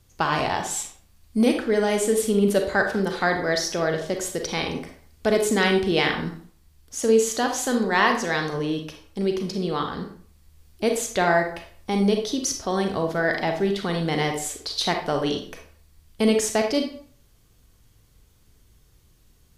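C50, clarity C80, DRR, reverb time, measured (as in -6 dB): 6.5 dB, 10.5 dB, 3.5 dB, 0.55 s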